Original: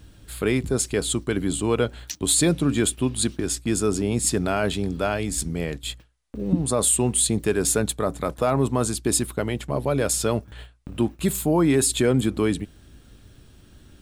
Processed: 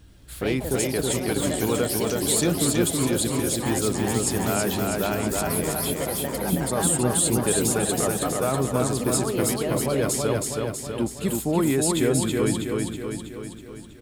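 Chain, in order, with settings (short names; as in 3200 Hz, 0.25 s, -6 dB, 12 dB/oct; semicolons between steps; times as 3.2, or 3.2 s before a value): echoes that change speed 81 ms, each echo +4 st, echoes 3, each echo -6 dB; feedback echo 0.323 s, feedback 58%, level -3 dB; gain -3.5 dB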